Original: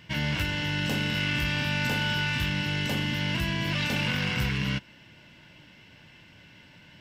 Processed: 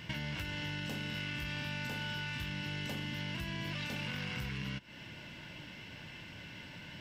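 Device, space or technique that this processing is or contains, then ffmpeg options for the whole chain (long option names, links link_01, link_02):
serial compression, peaks first: -af "acompressor=threshold=-37dB:ratio=4,acompressor=threshold=-42dB:ratio=2.5,volume=4dB"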